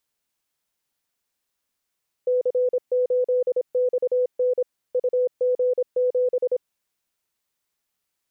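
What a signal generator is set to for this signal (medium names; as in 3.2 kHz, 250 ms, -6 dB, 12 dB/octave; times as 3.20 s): Morse "C8XN UG7" 26 wpm 500 Hz -17.5 dBFS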